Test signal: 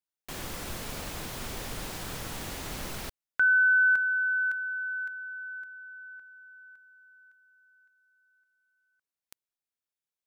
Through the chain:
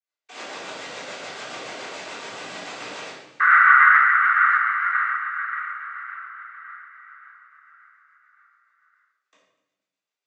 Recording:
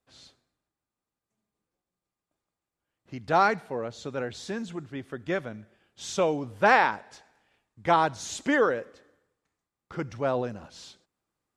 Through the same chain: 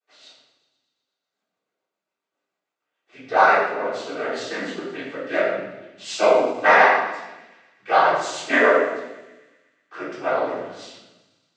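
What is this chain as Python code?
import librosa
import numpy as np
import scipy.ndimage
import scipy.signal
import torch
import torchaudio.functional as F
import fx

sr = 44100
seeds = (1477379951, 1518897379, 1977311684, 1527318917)

p1 = fx.noise_vocoder(x, sr, seeds[0], bands=16)
p2 = scipy.signal.sosfilt(scipy.signal.butter(2, 560.0, 'highpass', fs=sr, output='sos'), p1)
p3 = fx.high_shelf(p2, sr, hz=5300.0, db=-11.0)
p4 = fx.rider(p3, sr, range_db=3, speed_s=0.5)
p5 = p3 + (p4 * librosa.db_to_amplitude(-0.5))
p6 = fx.rotary(p5, sr, hz=7.0)
p7 = fx.echo_wet_highpass(p6, sr, ms=122, feedback_pct=67, hz=2600.0, wet_db=-16)
p8 = fx.room_shoebox(p7, sr, seeds[1], volume_m3=380.0, walls='mixed', distance_m=3.6)
p9 = fx.end_taper(p8, sr, db_per_s=190.0)
y = p9 * librosa.db_to_amplitude(-2.0)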